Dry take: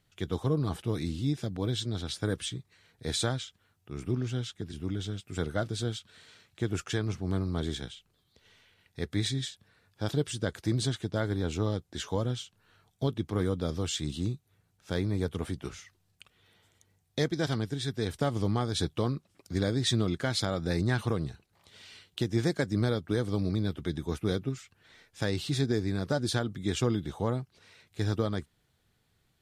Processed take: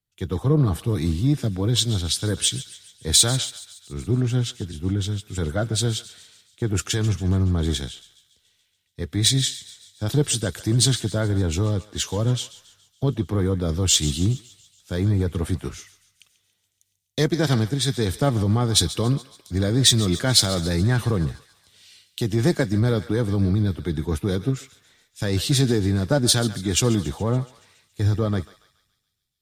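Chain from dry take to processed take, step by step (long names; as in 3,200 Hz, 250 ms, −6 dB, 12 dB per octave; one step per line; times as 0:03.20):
in parallel at −9.5 dB: asymmetric clip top −30.5 dBFS
on the sum: low-shelf EQ 220 Hz +5 dB
on a send: feedback echo with a high-pass in the loop 141 ms, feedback 79%, high-pass 1,100 Hz, level −13.5 dB
on the sum: brickwall limiter −17.5 dBFS, peak gain reduction 5 dB
high-shelf EQ 8,500 Hz +11.5 dB
multiband upward and downward expander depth 70%
level +5.5 dB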